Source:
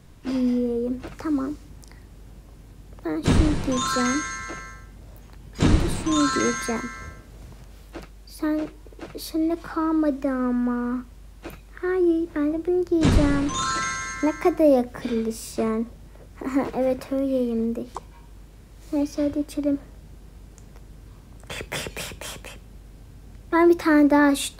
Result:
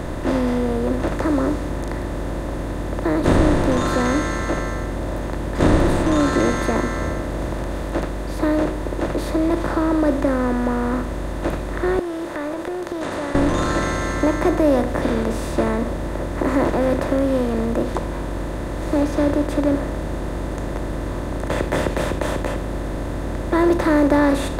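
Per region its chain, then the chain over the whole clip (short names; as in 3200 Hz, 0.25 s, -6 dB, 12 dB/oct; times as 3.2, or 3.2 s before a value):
11.99–13.35 HPF 860 Hz + compressor, threshold -40 dBFS
whole clip: per-bin compression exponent 0.4; high shelf 2200 Hz -8 dB; gain -2 dB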